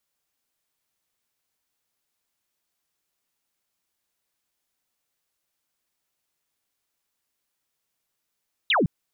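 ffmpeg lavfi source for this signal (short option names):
-f lavfi -i "aevalsrc='0.133*clip(t/0.002,0,1)*clip((0.16-t)/0.002,0,1)*sin(2*PI*4000*0.16/log(130/4000)*(exp(log(130/4000)*t/0.16)-1))':d=0.16:s=44100"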